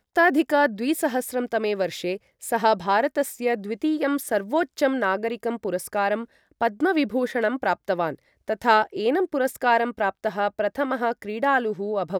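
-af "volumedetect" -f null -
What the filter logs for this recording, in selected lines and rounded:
mean_volume: -23.8 dB
max_volume: -5.3 dB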